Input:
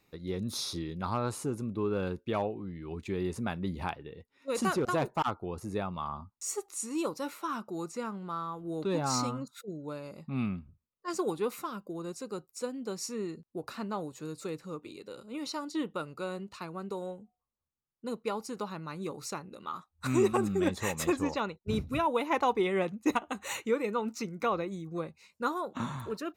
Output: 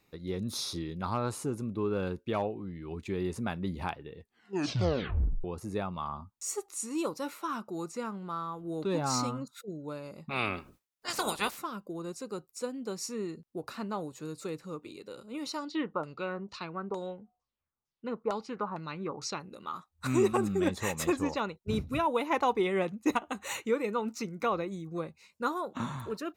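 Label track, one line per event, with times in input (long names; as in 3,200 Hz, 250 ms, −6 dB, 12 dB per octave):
4.170000	4.170000	tape stop 1.27 s
10.290000	11.560000	ceiling on every frequency bin ceiling under each frame's peak by 29 dB
15.580000	19.400000	auto-filter low-pass saw down 2.2 Hz 800–6,700 Hz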